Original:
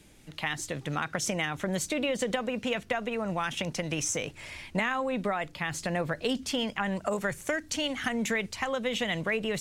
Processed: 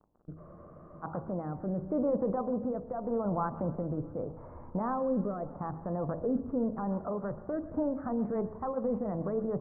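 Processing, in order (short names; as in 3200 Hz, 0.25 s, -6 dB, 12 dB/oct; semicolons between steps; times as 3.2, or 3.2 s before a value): gate with hold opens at -39 dBFS; in parallel at +3 dB: level quantiser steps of 17 dB; on the sum: crackle 75/s -33 dBFS; vocal rider 2 s; steep low-pass 1200 Hz 48 dB/oct; limiter -21.5 dBFS, peak gain reduction 10 dB; on a send at -17 dB: reverb RT60 0.85 s, pre-delay 0.105 s; on the sum: rotary speaker horn 0.8 Hz, later 7 Hz, at 7.4; de-hum 53.99 Hz, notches 20; spectral freeze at 0.39, 0.64 s; warbling echo 0.129 s, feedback 71%, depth 114 cents, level -21 dB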